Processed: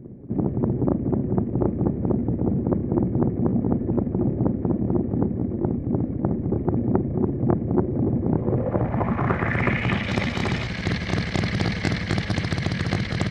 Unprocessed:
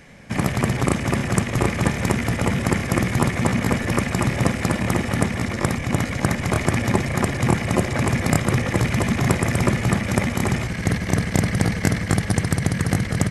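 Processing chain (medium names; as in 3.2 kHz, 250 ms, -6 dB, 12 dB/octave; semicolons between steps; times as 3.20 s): low-pass sweep 340 Hz -> 4.1 kHz, 8.26–10.17 s; reverse echo 581 ms -20 dB; transformer saturation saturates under 450 Hz; trim -2.5 dB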